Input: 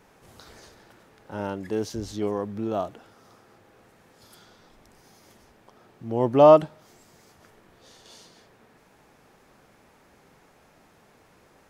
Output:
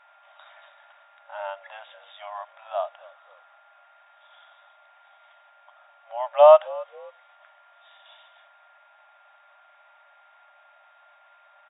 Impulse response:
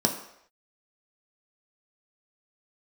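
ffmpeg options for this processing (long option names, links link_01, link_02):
-filter_complex "[0:a]afftfilt=real='re*between(b*sr/4096,560,3800)':imag='im*between(b*sr/4096,560,3800)':win_size=4096:overlap=0.75,asplit=3[link_01][link_02][link_03];[link_02]adelay=268,afreqshift=-50,volume=-21.5dB[link_04];[link_03]adelay=536,afreqshift=-100,volume=-32dB[link_05];[link_01][link_04][link_05]amix=inputs=3:normalize=0,aeval=exprs='val(0)+0.00126*sin(2*PI*1400*n/s)':channel_layout=same,volume=1.5dB"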